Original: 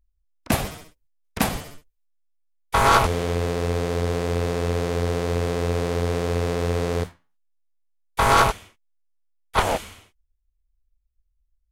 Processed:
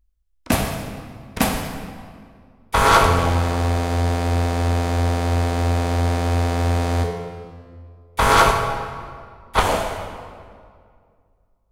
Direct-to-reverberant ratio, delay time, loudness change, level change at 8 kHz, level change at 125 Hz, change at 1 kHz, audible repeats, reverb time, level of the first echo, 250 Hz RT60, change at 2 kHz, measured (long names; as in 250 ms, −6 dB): 3.5 dB, no echo audible, +3.0 dB, +3.0 dB, +6.0 dB, +3.5 dB, no echo audible, 2.1 s, no echo audible, 2.3 s, +3.5 dB